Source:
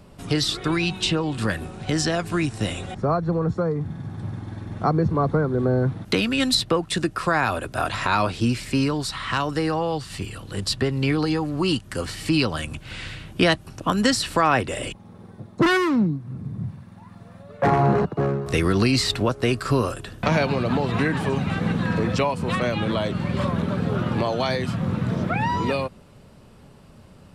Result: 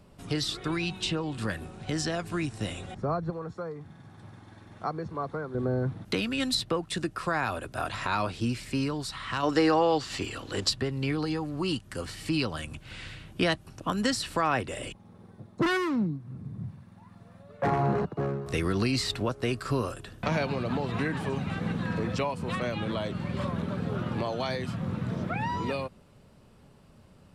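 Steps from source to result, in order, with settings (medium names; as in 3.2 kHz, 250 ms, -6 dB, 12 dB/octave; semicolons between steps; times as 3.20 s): 3.30–5.55 s: bass shelf 390 Hz -11.5 dB; 9.43–10.70 s: time-frequency box 230–7900 Hz +9 dB; trim -7.5 dB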